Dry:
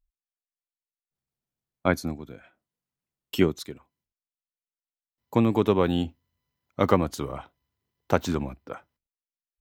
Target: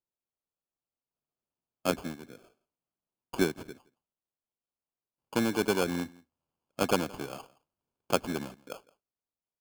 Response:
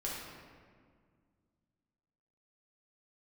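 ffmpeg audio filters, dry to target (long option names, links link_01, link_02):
-af "highpass=170,acrusher=samples=23:mix=1:aa=0.000001,aecho=1:1:168:0.0668,volume=-5.5dB"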